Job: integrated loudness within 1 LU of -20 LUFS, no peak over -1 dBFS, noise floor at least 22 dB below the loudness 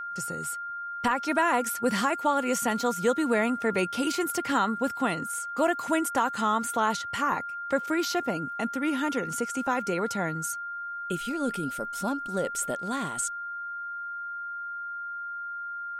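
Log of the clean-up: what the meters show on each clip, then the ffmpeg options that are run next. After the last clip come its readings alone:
steady tone 1400 Hz; tone level -33 dBFS; loudness -28.5 LUFS; peak -13.0 dBFS; loudness target -20.0 LUFS
-> -af "bandreject=f=1.4k:w=30"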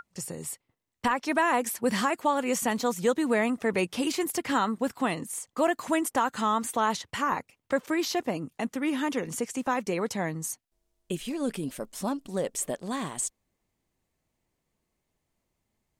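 steady tone none; loudness -29.0 LUFS; peak -13.5 dBFS; loudness target -20.0 LUFS
-> -af "volume=9dB"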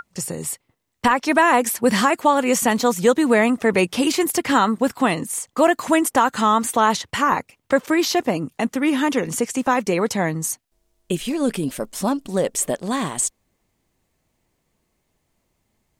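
loudness -20.0 LUFS; peak -4.5 dBFS; noise floor -72 dBFS

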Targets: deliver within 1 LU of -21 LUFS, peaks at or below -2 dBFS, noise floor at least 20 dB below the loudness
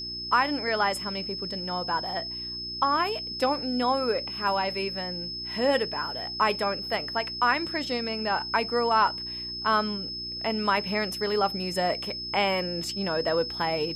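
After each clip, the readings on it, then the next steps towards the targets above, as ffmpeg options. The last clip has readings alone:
hum 60 Hz; harmonics up to 360 Hz; hum level -43 dBFS; steady tone 5200 Hz; tone level -33 dBFS; loudness -27.0 LUFS; peak -10.0 dBFS; loudness target -21.0 LUFS
-> -af "bandreject=f=60:t=h:w=4,bandreject=f=120:t=h:w=4,bandreject=f=180:t=h:w=4,bandreject=f=240:t=h:w=4,bandreject=f=300:t=h:w=4,bandreject=f=360:t=h:w=4"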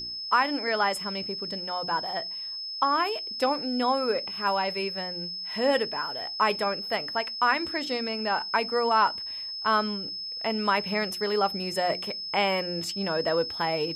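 hum none; steady tone 5200 Hz; tone level -33 dBFS
-> -af "bandreject=f=5.2k:w=30"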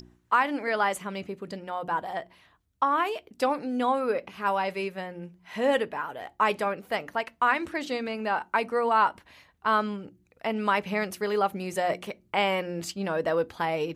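steady tone none; loudness -28.0 LUFS; peak -10.5 dBFS; loudness target -21.0 LUFS
-> -af "volume=7dB"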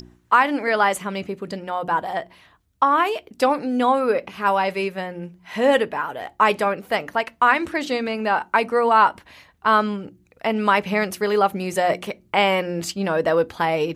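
loudness -21.0 LUFS; peak -3.5 dBFS; noise floor -58 dBFS

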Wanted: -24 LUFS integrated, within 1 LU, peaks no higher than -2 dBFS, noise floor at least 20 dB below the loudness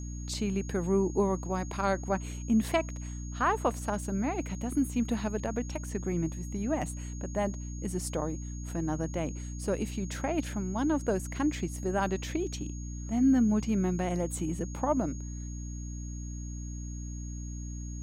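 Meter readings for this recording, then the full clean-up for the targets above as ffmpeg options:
hum 60 Hz; harmonics up to 300 Hz; hum level -36 dBFS; steady tone 6600 Hz; tone level -48 dBFS; loudness -32.0 LUFS; peak -15.0 dBFS; loudness target -24.0 LUFS
-> -af "bandreject=f=60:t=h:w=4,bandreject=f=120:t=h:w=4,bandreject=f=180:t=h:w=4,bandreject=f=240:t=h:w=4,bandreject=f=300:t=h:w=4"
-af "bandreject=f=6.6k:w=30"
-af "volume=8dB"

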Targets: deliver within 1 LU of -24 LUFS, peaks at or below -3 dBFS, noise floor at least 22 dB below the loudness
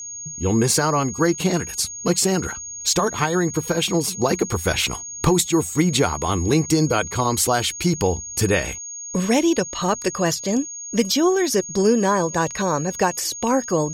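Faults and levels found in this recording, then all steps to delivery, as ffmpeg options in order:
steady tone 6600 Hz; tone level -31 dBFS; loudness -21.0 LUFS; peak -5.5 dBFS; loudness target -24.0 LUFS
-> -af "bandreject=f=6.6k:w=30"
-af "volume=-3dB"

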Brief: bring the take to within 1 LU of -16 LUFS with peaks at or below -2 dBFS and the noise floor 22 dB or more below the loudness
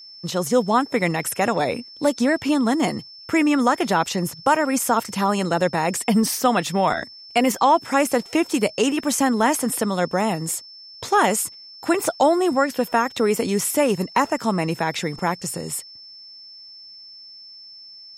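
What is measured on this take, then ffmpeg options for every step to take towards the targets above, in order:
steady tone 5300 Hz; tone level -40 dBFS; loudness -21.0 LUFS; peak -5.5 dBFS; loudness target -16.0 LUFS
-> -af "bandreject=f=5.3k:w=30"
-af "volume=5dB,alimiter=limit=-2dB:level=0:latency=1"

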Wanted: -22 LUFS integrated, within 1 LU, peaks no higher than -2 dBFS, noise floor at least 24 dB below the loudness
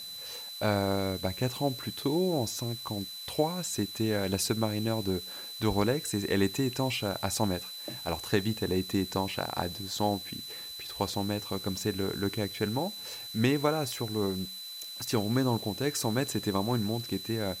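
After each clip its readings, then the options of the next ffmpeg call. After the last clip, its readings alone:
steady tone 4000 Hz; tone level -40 dBFS; noise floor -42 dBFS; noise floor target -55 dBFS; loudness -31.0 LUFS; peak -13.0 dBFS; loudness target -22.0 LUFS
-> -af "bandreject=f=4k:w=30"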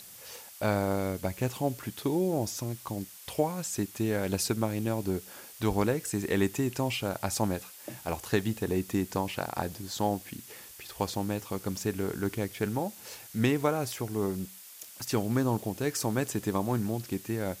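steady tone none; noise floor -49 dBFS; noise floor target -56 dBFS
-> -af "afftdn=nr=7:nf=-49"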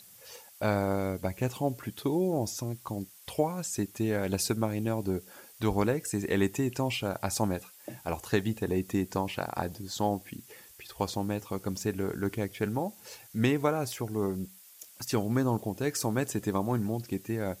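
noise floor -54 dBFS; noise floor target -56 dBFS
-> -af "afftdn=nr=6:nf=-54"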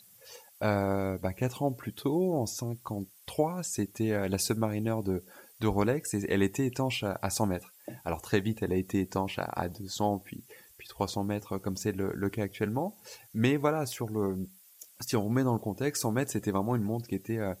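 noise floor -58 dBFS; loudness -31.5 LUFS; peak -13.5 dBFS; loudness target -22.0 LUFS
-> -af "volume=9.5dB"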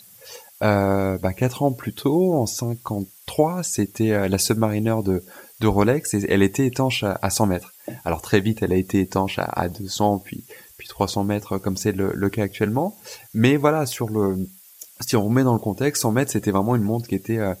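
loudness -22.0 LUFS; peak -4.0 dBFS; noise floor -48 dBFS

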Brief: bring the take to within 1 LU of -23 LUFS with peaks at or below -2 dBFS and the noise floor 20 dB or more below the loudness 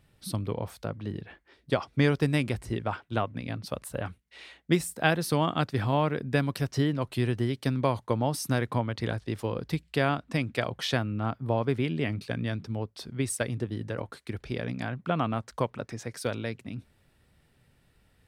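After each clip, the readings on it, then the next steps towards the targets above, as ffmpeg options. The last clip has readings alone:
loudness -30.0 LUFS; peak -6.5 dBFS; loudness target -23.0 LUFS
-> -af "volume=7dB,alimiter=limit=-2dB:level=0:latency=1"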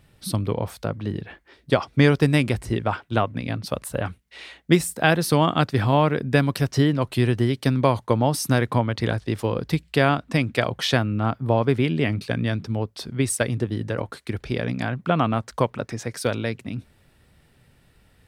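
loudness -23.0 LUFS; peak -2.0 dBFS; noise floor -59 dBFS

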